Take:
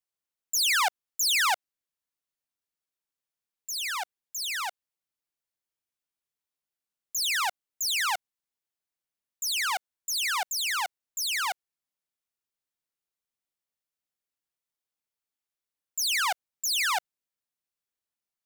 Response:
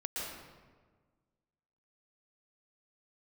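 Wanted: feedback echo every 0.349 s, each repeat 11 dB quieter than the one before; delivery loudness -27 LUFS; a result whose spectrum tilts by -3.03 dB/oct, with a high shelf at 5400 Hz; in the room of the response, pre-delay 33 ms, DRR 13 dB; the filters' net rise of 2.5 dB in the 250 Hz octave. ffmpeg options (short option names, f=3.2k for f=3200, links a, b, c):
-filter_complex "[0:a]equalizer=f=250:t=o:g=4,highshelf=f=5.4k:g=-7,aecho=1:1:349|698|1047:0.282|0.0789|0.0221,asplit=2[a][b];[1:a]atrim=start_sample=2205,adelay=33[c];[b][c]afir=irnorm=-1:irlink=0,volume=-16dB[d];[a][d]amix=inputs=2:normalize=0,volume=2.5dB"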